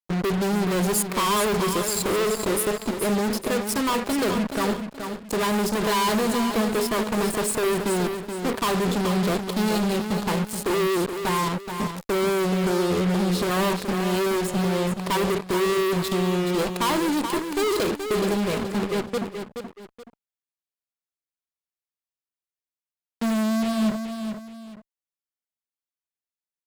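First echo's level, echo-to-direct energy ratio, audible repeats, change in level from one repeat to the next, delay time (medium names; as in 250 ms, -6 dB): -7.5 dB, -7.0 dB, 2, -10.0 dB, 426 ms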